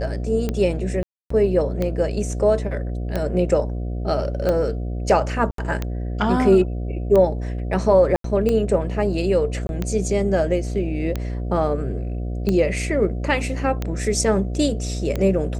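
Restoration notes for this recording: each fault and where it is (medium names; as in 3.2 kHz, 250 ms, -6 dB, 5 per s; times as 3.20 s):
buzz 60 Hz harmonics 12 -26 dBFS
tick 45 rpm -11 dBFS
1.03–1.30 s: dropout 274 ms
5.51–5.58 s: dropout 73 ms
8.16–8.24 s: dropout 83 ms
9.67–9.69 s: dropout 21 ms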